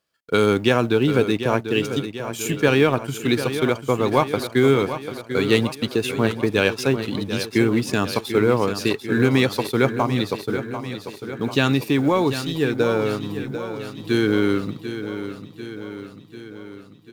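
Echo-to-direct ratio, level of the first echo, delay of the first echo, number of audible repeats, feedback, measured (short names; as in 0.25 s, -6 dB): -8.5 dB, -10.5 dB, 0.743 s, 6, 60%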